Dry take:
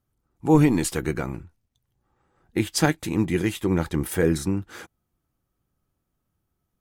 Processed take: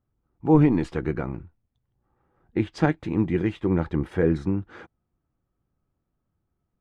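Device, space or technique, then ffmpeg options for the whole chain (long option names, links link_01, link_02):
phone in a pocket: -af "lowpass=3600,highshelf=frequency=2400:gain=-11.5"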